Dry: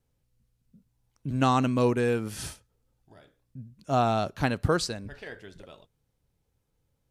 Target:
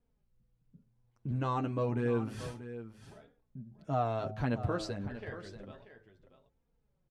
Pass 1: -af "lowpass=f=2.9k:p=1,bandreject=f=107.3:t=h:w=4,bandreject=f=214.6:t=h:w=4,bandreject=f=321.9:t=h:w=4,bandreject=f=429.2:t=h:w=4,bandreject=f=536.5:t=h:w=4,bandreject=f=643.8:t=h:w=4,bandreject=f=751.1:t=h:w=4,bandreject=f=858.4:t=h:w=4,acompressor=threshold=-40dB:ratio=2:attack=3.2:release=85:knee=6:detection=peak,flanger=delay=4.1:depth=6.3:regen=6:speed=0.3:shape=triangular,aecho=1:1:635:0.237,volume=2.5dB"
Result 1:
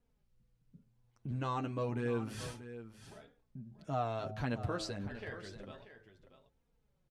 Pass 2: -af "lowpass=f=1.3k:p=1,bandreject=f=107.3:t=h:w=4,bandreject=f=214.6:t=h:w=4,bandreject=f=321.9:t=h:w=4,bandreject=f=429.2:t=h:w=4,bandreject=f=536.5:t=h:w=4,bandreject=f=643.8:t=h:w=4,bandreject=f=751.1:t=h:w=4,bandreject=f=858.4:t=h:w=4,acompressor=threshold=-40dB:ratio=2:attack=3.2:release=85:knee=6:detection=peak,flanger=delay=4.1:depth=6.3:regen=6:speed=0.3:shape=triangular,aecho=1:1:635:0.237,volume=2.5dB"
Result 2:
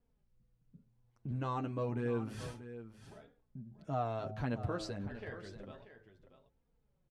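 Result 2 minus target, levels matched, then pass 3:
compressor: peak gain reduction +4 dB
-af "lowpass=f=1.3k:p=1,bandreject=f=107.3:t=h:w=4,bandreject=f=214.6:t=h:w=4,bandreject=f=321.9:t=h:w=4,bandreject=f=429.2:t=h:w=4,bandreject=f=536.5:t=h:w=4,bandreject=f=643.8:t=h:w=4,bandreject=f=751.1:t=h:w=4,bandreject=f=858.4:t=h:w=4,acompressor=threshold=-31.5dB:ratio=2:attack=3.2:release=85:knee=6:detection=peak,flanger=delay=4.1:depth=6.3:regen=6:speed=0.3:shape=triangular,aecho=1:1:635:0.237,volume=2.5dB"

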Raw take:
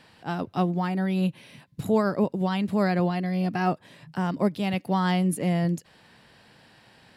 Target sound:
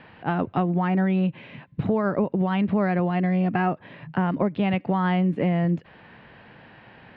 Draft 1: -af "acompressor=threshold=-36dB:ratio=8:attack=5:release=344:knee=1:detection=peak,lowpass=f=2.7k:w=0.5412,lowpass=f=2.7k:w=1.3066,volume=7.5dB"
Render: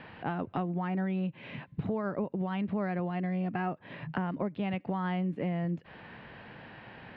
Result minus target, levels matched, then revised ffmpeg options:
compressor: peak gain reduction +9.5 dB
-af "acompressor=threshold=-25dB:ratio=8:attack=5:release=344:knee=1:detection=peak,lowpass=f=2.7k:w=0.5412,lowpass=f=2.7k:w=1.3066,volume=7.5dB"

